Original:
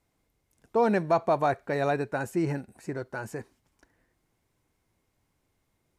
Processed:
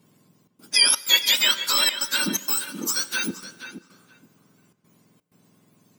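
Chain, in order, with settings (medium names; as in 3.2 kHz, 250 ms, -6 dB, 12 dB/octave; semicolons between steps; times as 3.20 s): spectrum inverted on a logarithmic axis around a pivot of 1.5 kHz; treble shelf 4.5 kHz +5.5 dB; in parallel at +2.5 dB: compression, threshold -37 dBFS, peak gain reduction 15.5 dB; on the sum: de-hum 196.2 Hz, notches 21; trance gate "xxxx.xxx.xxx" 127 bpm -24 dB; filtered feedback delay 476 ms, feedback 16%, low-pass 3.6 kHz, level -10.5 dB; on a send at -18 dB: reverberation RT60 2.3 s, pre-delay 4 ms; on the sum: trim +6.5 dB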